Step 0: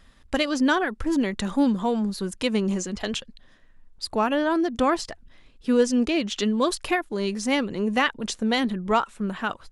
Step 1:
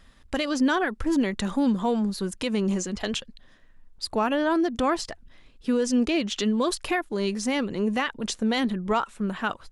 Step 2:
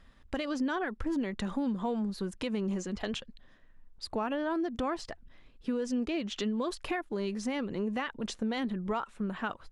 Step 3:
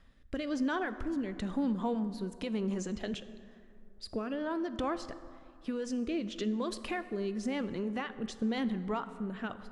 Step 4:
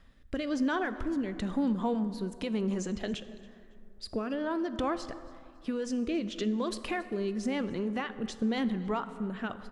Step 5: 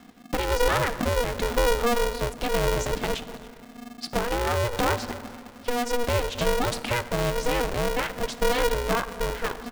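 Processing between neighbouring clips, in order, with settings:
peak limiter -15 dBFS, peak gain reduction 7 dB
treble shelf 4.7 kHz -10.5 dB; compression 2.5:1, threshold -27 dBFS, peak gain reduction 6.5 dB; trim -3.5 dB
rotary cabinet horn 1 Hz; reverberation RT60 2.5 s, pre-delay 8 ms, DRR 12 dB
feedback delay 278 ms, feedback 31%, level -23 dB; trim +2.5 dB
polarity switched at an audio rate 240 Hz; trim +7 dB

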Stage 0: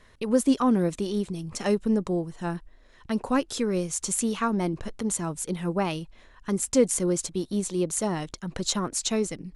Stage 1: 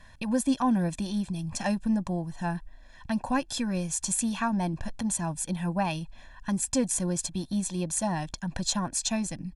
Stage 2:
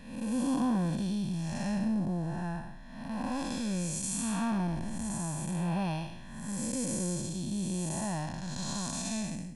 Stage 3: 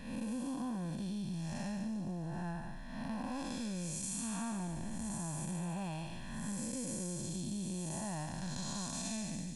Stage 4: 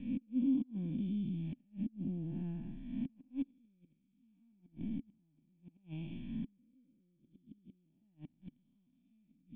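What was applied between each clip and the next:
comb 1.2 ms, depth 95%; in parallel at -0.5 dB: compression, threshold -32 dBFS, peak gain reduction 15 dB; on the sum: trim -6 dB
spectral blur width 306 ms; trim +1 dB
compression 10:1, threshold -38 dBFS, peak gain reduction 12.5 dB; feedback echo behind a high-pass 145 ms, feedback 69%, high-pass 3.1 kHz, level -8 dB; trim +1.5 dB
inverted gate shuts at -31 dBFS, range -34 dB; cascade formant filter i; trim +10 dB

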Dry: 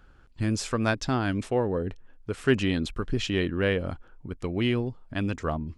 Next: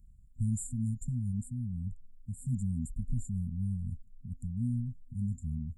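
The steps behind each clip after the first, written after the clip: FFT band-reject 250–7000 Hz; peaking EQ 410 Hz -13.5 dB 1.6 oct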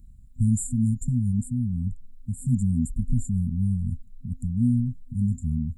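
small resonant body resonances 300/3900 Hz, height 14 dB, ringing for 60 ms; trim +8.5 dB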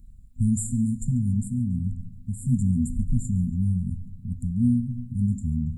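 thinning echo 140 ms, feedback 54%, level -21.5 dB; on a send at -12 dB: reverberation RT60 1.0 s, pre-delay 4 ms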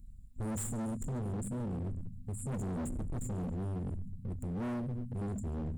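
overload inside the chain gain 31 dB; trim -3.5 dB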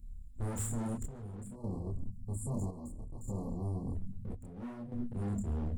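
chorus voices 6, 0.9 Hz, delay 28 ms, depth 2.4 ms; square tremolo 0.61 Hz, depth 65%, duty 65%; spectral selection erased 1.55–3.95 s, 1.2–4 kHz; trim +3 dB

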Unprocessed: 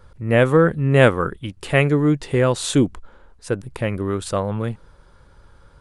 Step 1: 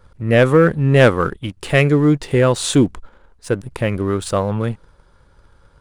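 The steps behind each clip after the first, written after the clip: waveshaping leveller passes 1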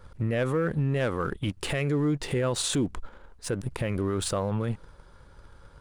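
compression, threshold -17 dBFS, peak gain reduction 10.5 dB; peak limiter -19 dBFS, peak gain reduction 10.5 dB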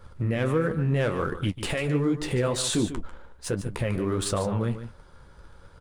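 flange 1.4 Hz, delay 8.7 ms, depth 9.9 ms, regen -38%; on a send: delay 146 ms -11.5 dB; on the sum: trim +5 dB

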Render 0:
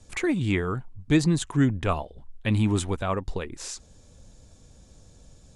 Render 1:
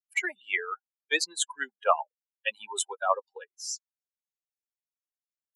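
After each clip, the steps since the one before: expander on every frequency bin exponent 3; steep high-pass 530 Hz 36 dB/octave; trim +9 dB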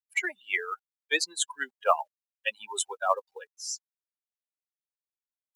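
companded quantiser 8-bit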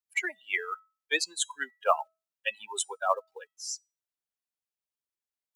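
feedback comb 650 Hz, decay 0.32 s, mix 40%; trim +3 dB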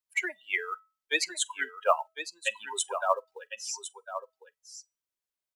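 delay 1054 ms -10.5 dB; reverberation, pre-delay 3 ms, DRR 15 dB

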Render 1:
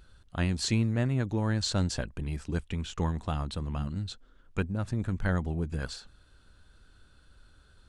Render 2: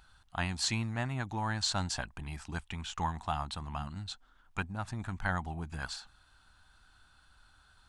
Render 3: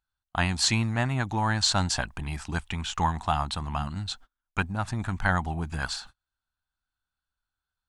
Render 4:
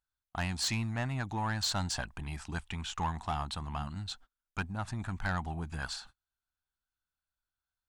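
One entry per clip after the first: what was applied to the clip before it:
resonant low shelf 630 Hz -7.5 dB, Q 3
gate -53 dBFS, range -34 dB; trim +8 dB
saturation -19 dBFS, distortion -16 dB; trim -6 dB

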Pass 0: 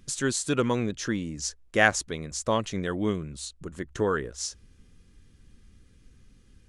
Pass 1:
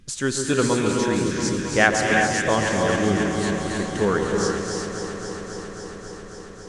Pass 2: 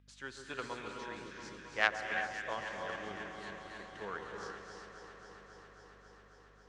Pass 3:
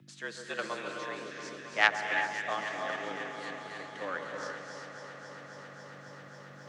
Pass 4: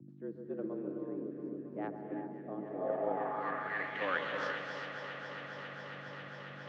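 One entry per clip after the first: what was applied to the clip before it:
treble shelf 9.8 kHz -6.5 dB; echo whose repeats swap between lows and highs 136 ms, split 1.3 kHz, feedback 90%, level -7 dB; gated-style reverb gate 400 ms rising, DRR 2 dB; trim +3 dB
hum 50 Hz, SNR 12 dB; Chebyshev shaper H 3 -13 dB, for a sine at -1 dBFS; three-band isolator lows -14 dB, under 590 Hz, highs -19 dB, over 4.3 kHz; trim -6.5 dB
band-stop 890 Hz, Q 23; reverse; upward compressor, threshold -47 dBFS; reverse; frequency shift +91 Hz; trim +5.5 dB
low-pass sweep 320 Hz -> 3 kHz, 2.57–4.12 s; trim +1 dB

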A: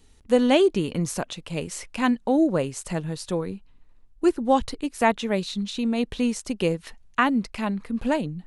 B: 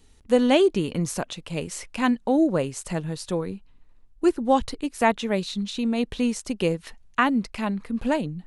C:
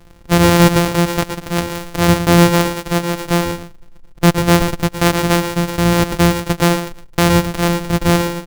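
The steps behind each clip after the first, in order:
no audible change
sorted samples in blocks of 256 samples; delay 114 ms -10.5 dB; loudness maximiser +12 dB; trim -1 dB

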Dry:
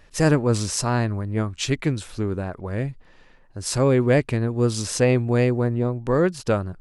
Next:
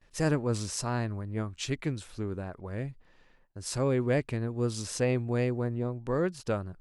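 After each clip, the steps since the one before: gate with hold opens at -43 dBFS; trim -9 dB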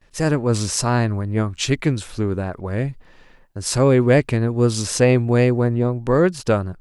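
level rider gain up to 5.5 dB; trim +7 dB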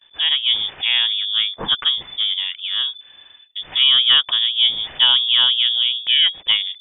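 frequency inversion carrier 3.5 kHz

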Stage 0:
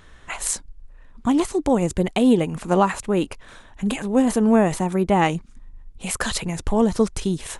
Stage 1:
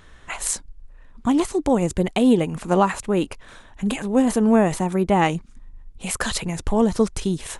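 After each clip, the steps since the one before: no audible change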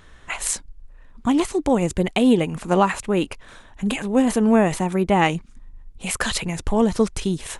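dynamic bell 2.5 kHz, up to +4 dB, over -40 dBFS, Q 1.2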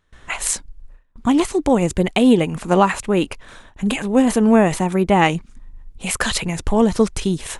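gate with hold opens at -37 dBFS; trim +3 dB

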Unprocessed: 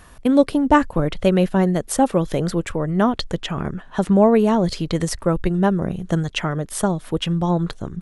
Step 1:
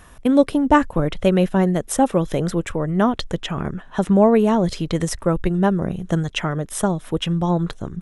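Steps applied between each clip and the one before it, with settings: band-stop 4.5 kHz, Q 7.7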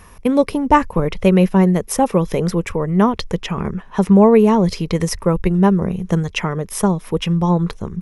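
rippled EQ curve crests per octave 0.84, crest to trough 7 dB; trim +2 dB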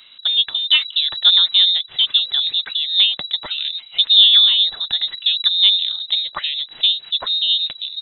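small resonant body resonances 390/730 Hz, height 10 dB; frequency inversion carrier 3.9 kHz; trim -4 dB

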